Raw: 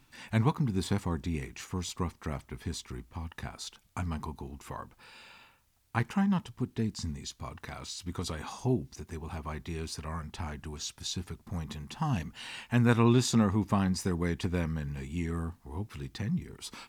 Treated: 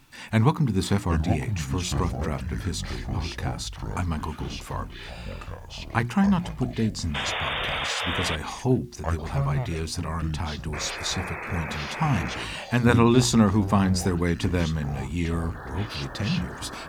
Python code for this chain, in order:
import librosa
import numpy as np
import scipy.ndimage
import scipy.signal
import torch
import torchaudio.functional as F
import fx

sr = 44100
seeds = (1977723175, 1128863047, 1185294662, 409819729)

y = fx.spec_paint(x, sr, seeds[0], shape='noise', start_s=7.14, length_s=1.22, low_hz=440.0, high_hz=3700.0, level_db=-36.0)
y = fx.echo_pitch(y, sr, ms=628, semitones=-6, count=3, db_per_echo=-6.0)
y = fx.hum_notches(y, sr, base_hz=60, count=6)
y = F.gain(torch.from_numpy(y), 7.0).numpy()